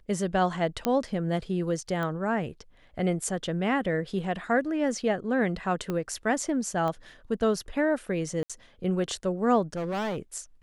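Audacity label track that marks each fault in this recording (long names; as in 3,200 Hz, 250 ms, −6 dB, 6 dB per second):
0.850000	0.850000	click −11 dBFS
2.030000	2.030000	click −20 dBFS
5.900000	5.900000	click −18 dBFS
6.880000	6.880000	click −20 dBFS
8.430000	8.500000	drop-out 66 ms
9.730000	10.200000	clipping −27.5 dBFS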